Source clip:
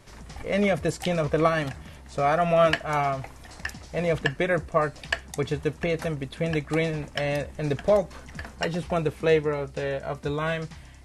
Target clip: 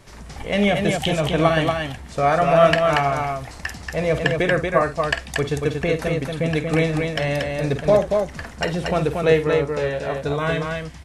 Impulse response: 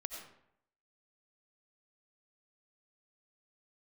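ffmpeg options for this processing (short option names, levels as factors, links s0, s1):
-filter_complex "[0:a]asettb=1/sr,asplit=3[s0][s1][s2];[s0]atrim=end=0.404[s3];[s1]atrim=start=0.4:end=1.73,asetpts=PTS-STARTPTS,afade=t=in:d=0.004:c=qsin,afade=t=out:st=1.326:d=0.004:c=qsin,equalizer=f=500:t=o:w=0.33:g=-5,equalizer=f=800:t=o:w=0.33:g=5,equalizer=f=1250:t=o:w=0.33:g=-4,equalizer=f=3150:t=o:w=0.33:g=9,equalizer=f=5000:t=o:w=0.33:g=-5[s4];[s2]atrim=start=1.726[s5];[s3][s4]acrossfade=d=0.004:c1=hsin:c2=qsin[s6];[s6][s5]acrossfade=d=0.004:c1=qsin:c2=hsin,aecho=1:1:49.56|233.2:0.282|0.631,volume=1.58"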